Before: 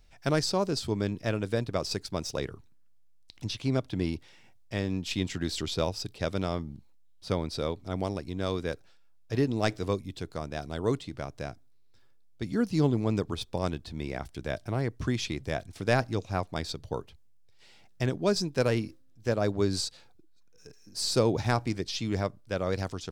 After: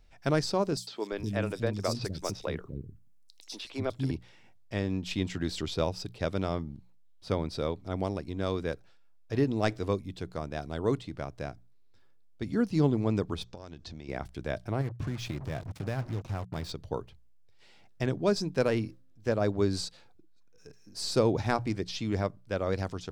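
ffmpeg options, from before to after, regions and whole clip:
ffmpeg -i in.wav -filter_complex "[0:a]asettb=1/sr,asplit=3[link_01][link_02][link_03];[link_01]atrim=end=0.774[link_04];[link_02]atrim=start=0.77:end=4.11,asetpts=PTS-STARTPTS,afade=type=in:duration=0.004:curve=qsin,afade=type=out:start_time=3.336:duration=0.004:curve=qsin,highshelf=frequency=5500:gain=7.5,acrossover=split=300|4200[link_05][link_06][link_07];[link_06]adelay=100[link_08];[link_05]adelay=350[link_09];[link_09][link_08][link_07]amix=inputs=3:normalize=0,atrim=end_sample=147294[link_10];[link_03]atrim=start=4.106[link_11];[link_04][link_10]acrossfade=duration=0.004:curve1=hsin:curve2=qsin[link_12];[link_12][link_11]acrossfade=duration=0.004:curve1=qsin:curve2=hsin,asettb=1/sr,asplit=3[link_13][link_14][link_15];[link_13]atrim=end=13.444[link_16];[link_14]atrim=start=13.44:end=14.09,asetpts=PTS-STARTPTS,afade=type=in:duration=0.004:curve=qsin,afade=type=out:start_time=0.646:duration=0.004:curve=qsin,acompressor=threshold=-38dB:ratio=16:attack=3.2:release=140:knee=1:detection=peak,lowpass=frequency=6100:width_type=q:width=2.5[link_17];[link_15]atrim=start=14.086[link_18];[link_16][link_17]acrossfade=duration=0.004:curve1=hsin:curve2=qsin[link_19];[link_19][link_18]acrossfade=duration=0.004:curve1=qsin:curve2=hsin,asettb=1/sr,asplit=3[link_20][link_21][link_22];[link_20]atrim=end=14.814[link_23];[link_21]atrim=start=14.81:end=16.72,asetpts=PTS-STARTPTS,afade=type=in:duration=0.004:curve=qsin,afade=type=out:start_time=1.906:duration=0.004:curve=qsin,equalizer=frequency=120:width_type=o:width=1.2:gain=10.5,acompressor=threshold=-30dB:ratio=4:attack=3.2:release=140:knee=1:detection=peak,acrusher=bits=6:mix=0:aa=0.5[link_24];[link_22]atrim=start=16.716[link_25];[link_23][link_24]acrossfade=duration=0.004:curve1=hsin:curve2=qsin[link_26];[link_26][link_25]acrossfade=duration=0.004:curve1=qsin:curve2=hsin,highshelf=frequency=3700:gain=-6.5,bandreject=frequency=60:width_type=h:width=6,bandreject=frequency=120:width_type=h:width=6,bandreject=frequency=180:width_type=h:width=6" out.wav

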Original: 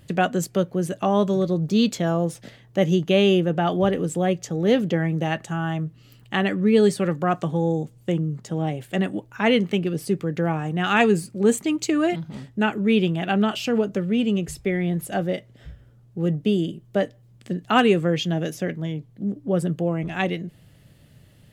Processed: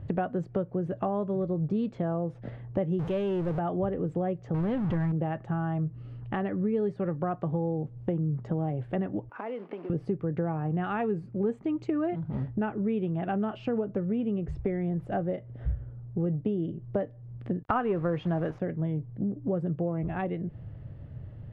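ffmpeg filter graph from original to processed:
ffmpeg -i in.wav -filter_complex "[0:a]asettb=1/sr,asplit=3[link_01][link_02][link_03];[link_01]atrim=end=2.994[link_04];[link_02]atrim=start=2.99:end=3.59,asetpts=PTS-STARTPTS,afade=type=in:duration=0.004:curve=qsin,afade=type=out:start_time=0.596:duration=0.004:curve=qsin,aeval=exprs='val(0)+0.5*0.0841*sgn(val(0))':channel_layout=same,aemphasis=mode=production:type=75fm[link_05];[link_03]atrim=start=3.586[link_06];[link_04][link_05]acrossfade=duration=0.004:curve1=hsin:curve2=qsin[link_07];[link_07][link_06]acrossfade=duration=0.004:curve1=qsin:curve2=hsin,asettb=1/sr,asplit=3[link_08][link_09][link_10];[link_08]atrim=end=4.544[link_11];[link_09]atrim=start=4.54:end=5.12,asetpts=PTS-STARTPTS,afade=type=in:duration=0.004:curve=qsin,afade=type=out:start_time=0.576:duration=0.004:curve=qsin,aeval=exprs='val(0)+0.5*0.075*sgn(val(0))':channel_layout=same,equalizer=frequency=440:width=1.7:gain=-11.5[link_12];[link_10]atrim=start=5.116[link_13];[link_11][link_12]acrossfade=duration=0.004:curve1=hsin:curve2=qsin[link_14];[link_14][link_13]acrossfade=duration=0.004:curve1=qsin:curve2=hsin,asettb=1/sr,asplit=3[link_15][link_16][link_17];[link_15]atrim=end=9.294[link_18];[link_16]atrim=start=9.29:end=9.9,asetpts=PTS-STARTPTS,afade=type=in:duration=0.004:curve=qsin,afade=type=out:start_time=0.606:duration=0.004:curve=qsin,acompressor=threshold=-32dB:ratio=16:attack=3.2:release=140:knee=1:detection=peak,acrusher=bits=3:mode=log:mix=0:aa=0.000001,highpass=frequency=280:width=0.5412,highpass=frequency=280:width=1.3066,equalizer=frequency=360:width_type=q:width=4:gain=-3,equalizer=frequency=1600:width_type=q:width=4:gain=-4,equalizer=frequency=3900:width_type=q:width=4:gain=-6,lowpass=frequency=5000:width=0.5412,lowpass=frequency=5000:width=1.3066[link_19];[link_17]atrim=start=9.896[link_20];[link_18][link_19]acrossfade=duration=0.004:curve1=hsin:curve2=qsin[link_21];[link_21][link_20]acrossfade=duration=0.004:curve1=qsin:curve2=hsin,asettb=1/sr,asplit=3[link_22][link_23][link_24];[link_22]atrim=end=17.634[link_25];[link_23]atrim=start=17.63:end=18.6,asetpts=PTS-STARTPTS,afade=type=in:duration=0.004:curve=qsin,afade=type=out:start_time=0.966:duration=0.004:curve=qsin,acontrast=24,equalizer=frequency=1200:width_type=o:width=1.4:gain=9.5,acrusher=bits=4:mix=0:aa=0.5[link_26];[link_24]atrim=start=18.596[link_27];[link_25][link_26]acrossfade=duration=0.004:curve1=hsin:curve2=qsin[link_28];[link_28][link_27]acrossfade=duration=0.004:curve1=qsin:curve2=hsin,acompressor=threshold=-32dB:ratio=4,lowpass=1100,lowshelf=frequency=140:width_type=q:width=1.5:gain=6,volume=5dB" out.wav

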